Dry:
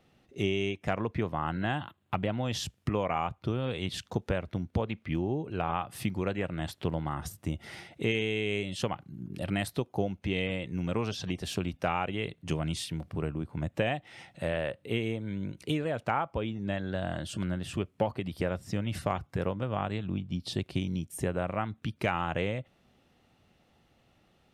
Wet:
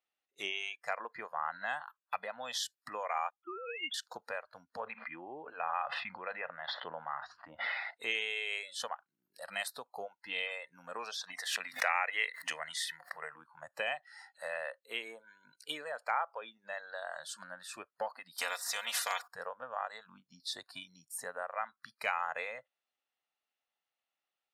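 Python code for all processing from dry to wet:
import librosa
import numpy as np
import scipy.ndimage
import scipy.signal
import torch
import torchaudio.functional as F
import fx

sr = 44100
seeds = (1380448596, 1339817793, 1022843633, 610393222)

y = fx.chain(x, sr, fx.sine_speech(),
    fx.band_widen(depth_pct=70), at=(3.3, 3.94))
y = fx.chain(y, sr, fx.lowpass(hz=3200.0, slope=24),
    fx.sustainer(db_per_s=25.0), at=(4.79, 7.91))
y = fx.chain(y, sr, fx.highpass(hz=160.0, slope=12),
    fx.peak_eq(hz=1900.0, db=14.0, octaves=0.38),
    fx.pre_swell(db_per_s=84.0), at=(11.33, 13.41))
y = fx.chain(y, sr, fx.comb(ms=4.2, depth=0.63),
    fx.spectral_comp(ratio=2.0), at=(18.38, 19.28))
y = scipy.signal.sosfilt(scipy.signal.butter(2, 920.0, 'highpass', fs=sr, output='sos'), y)
y = fx.noise_reduce_blind(y, sr, reduce_db=20)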